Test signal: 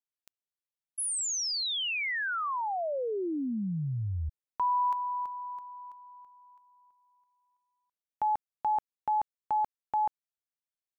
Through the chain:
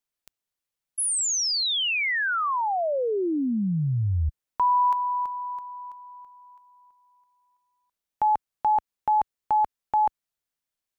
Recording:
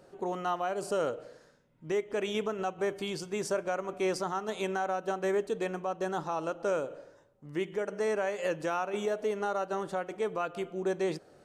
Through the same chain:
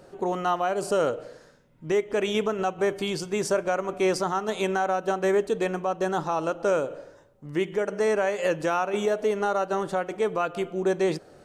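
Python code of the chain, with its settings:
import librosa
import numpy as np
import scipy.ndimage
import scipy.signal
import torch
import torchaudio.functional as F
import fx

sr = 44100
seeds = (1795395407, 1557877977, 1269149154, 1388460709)

y = fx.low_shelf(x, sr, hz=61.0, db=6.0)
y = y * librosa.db_to_amplitude(6.5)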